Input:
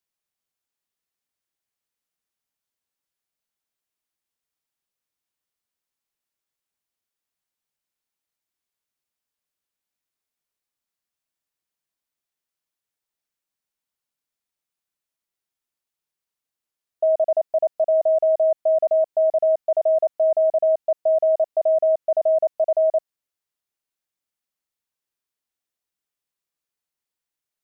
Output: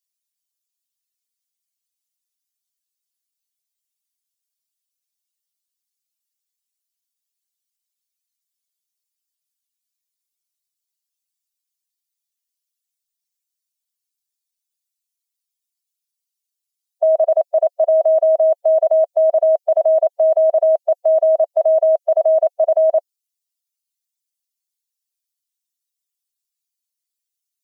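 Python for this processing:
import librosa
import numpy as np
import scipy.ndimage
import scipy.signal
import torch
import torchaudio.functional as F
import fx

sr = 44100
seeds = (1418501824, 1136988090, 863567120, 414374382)

p1 = fx.bin_expand(x, sr, power=2.0)
p2 = scipy.signal.sosfilt(scipy.signal.butter(2, 600.0, 'highpass', fs=sr, output='sos'), p1)
p3 = fx.over_compress(p2, sr, threshold_db=-24.0, ratio=-0.5)
p4 = p2 + F.gain(torch.from_numpy(p3), -3.0).numpy()
y = F.gain(torch.from_numpy(p4), 5.0).numpy()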